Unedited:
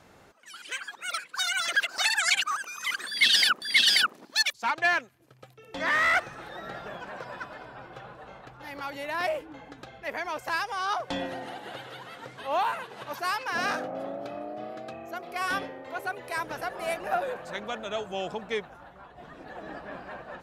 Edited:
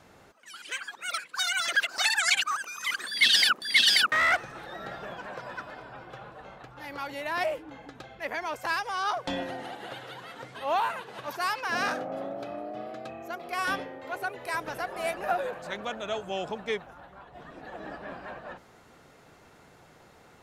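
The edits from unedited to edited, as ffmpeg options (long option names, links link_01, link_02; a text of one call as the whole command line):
ffmpeg -i in.wav -filter_complex "[0:a]asplit=2[link_01][link_02];[link_01]atrim=end=4.122[link_03];[link_02]atrim=start=5.948[link_04];[link_03][link_04]acrossfade=duration=0.004:curve1=hsin:curve2=hsin" out.wav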